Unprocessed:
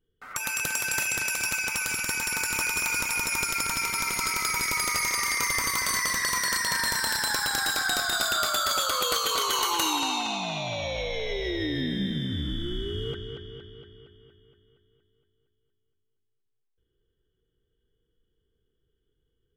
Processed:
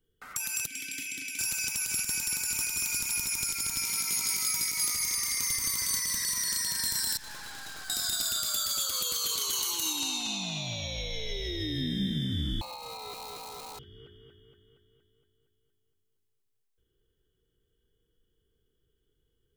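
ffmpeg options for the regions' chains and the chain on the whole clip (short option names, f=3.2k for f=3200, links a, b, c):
-filter_complex "[0:a]asettb=1/sr,asplit=3[a][b][c];[a]atrim=end=0.664[d];[b]atrim=start=0.66:end=1.39,asetpts=PTS-STARTPTS,afade=t=in:d=0.004:c=qsin,afade=t=out:st=0.726:d=0.004:c=qsin,aemphasis=mode=production:type=50kf,acontrast=54,asplit=3[e][f][g];[e]bandpass=f=270:t=q:w=8,volume=0dB[h];[f]bandpass=f=2.29k:t=q:w=8,volume=-6dB[i];[g]bandpass=f=3.01k:t=q:w=8,volume=-9dB[j];[h][i][j]amix=inputs=3:normalize=0[k];[c]atrim=start=1.386[l];[d][k]acrossfade=d=0.004:c1=hsin:c2=qsin[m];[m][l]acrossfade=d=0.004:c1=qsin:c2=hsin,asettb=1/sr,asplit=3[n][o][p];[n]atrim=end=3.844[q];[o]atrim=start=3.84:end=4.95,asetpts=PTS-STARTPTS,afade=t=in:d=0.004:c=qsin,afade=t=out:st=1.106:d=0.004:c=qsin,highpass=f=160:p=1,asplit=2[r][s];[s]adelay=18,volume=-5dB[t];[r][t]amix=inputs=2:normalize=0,atrim=end_sample=48951[u];[p]atrim=start=4.946[v];[q][u]acrossfade=d=0.004:c1=hsin:c2=qsin[w];[w][v]acrossfade=d=0.004:c1=qsin:c2=hsin,asettb=1/sr,asplit=3[x][y][z];[x]atrim=end=7.174[aa];[y]atrim=start=7.17:end=7.9,asetpts=PTS-STARTPTS,afade=t=in:d=0.004:c=qsin,afade=t=out:st=0.726:d=0.004:c=qsin,lowpass=2.8k,aeval=exprs='(tanh(100*val(0)+0.65)-tanh(0.65))/100':c=same[ab];[z]atrim=start=7.896[ac];[aa][ab]acrossfade=d=0.004:c1=hsin:c2=qsin[ad];[ad][ac]acrossfade=d=0.004:c1=qsin:c2=hsin,asettb=1/sr,asplit=3[ae][af][ag];[ae]atrim=end=12.614[ah];[af]atrim=start=12.61:end=13.79,asetpts=PTS-STARTPTS,afade=t=in:d=0.004:c=qsin,afade=t=out:st=1.176:d=0.004:c=qsin,aeval=exprs='val(0)+0.5*0.0158*sgn(val(0))':c=same,lowshelf=f=490:g=10.5,aeval=exprs='val(0)*sin(2*PI*870*n/s)':c=same[ai];[ag]atrim=start=13.786[aj];[ah][ai]acrossfade=d=0.004:c1=hsin:c2=qsin[ak];[ak][aj]acrossfade=d=0.004:c1=qsin:c2=hsin,highshelf=f=5.1k:g=7,alimiter=limit=-17dB:level=0:latency=1:release=116,acrossover=split=280|3000[al][am][an];[am]acompressor=threshold=-45dB:ratio=6[ao];[al][ao][an]amix=inputs=3:normalize=0"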